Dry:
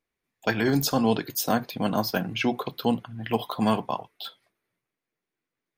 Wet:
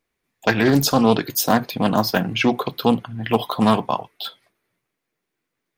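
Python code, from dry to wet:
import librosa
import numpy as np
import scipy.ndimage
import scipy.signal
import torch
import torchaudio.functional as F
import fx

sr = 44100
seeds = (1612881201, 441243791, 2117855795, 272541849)

y = fx.doppler_dist(x, sr, depth_ms=0.19)
y = y * librosa.db_to_amplitude(7.0)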